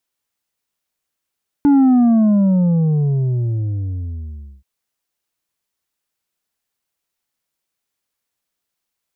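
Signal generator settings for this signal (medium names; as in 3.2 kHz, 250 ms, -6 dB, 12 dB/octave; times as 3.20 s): sub drop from 290 Hz, over 2.98 s, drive 5 dB, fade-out 2.91 s, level -9 dB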